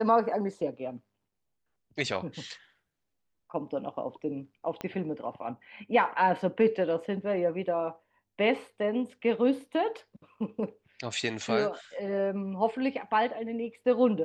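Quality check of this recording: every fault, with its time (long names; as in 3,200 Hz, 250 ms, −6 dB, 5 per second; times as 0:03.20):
0:04.81: click −21 dBFS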